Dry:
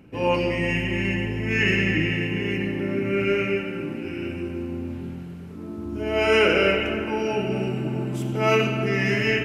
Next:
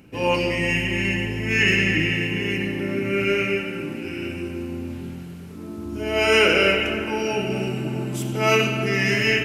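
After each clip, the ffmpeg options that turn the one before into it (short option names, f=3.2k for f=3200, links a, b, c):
-af "highshelf=f=3.1k:g=10.5"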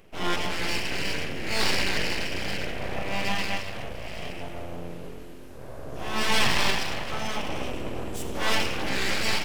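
-af "aeval=exprs='abs(val(0))':c=same,volume=-3dB"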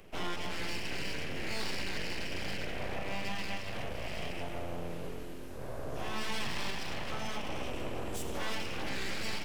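-filter_complex "[0:a]acrossover=split=160|400[a][b][c];[a]acompressor=threshold=-35dB:ratio=4[d];[b]acompressor=threshold=-47dB:ratio=4[e];[c]acompressor=threshold=-39dB:ratio=4[f];[d][e][f]amix=inputs=3:normalize=0"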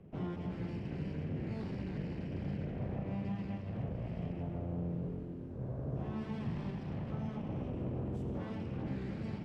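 -af "bandpass=f=140:t=q:w=1.4:csg=0,volume=9.5dB"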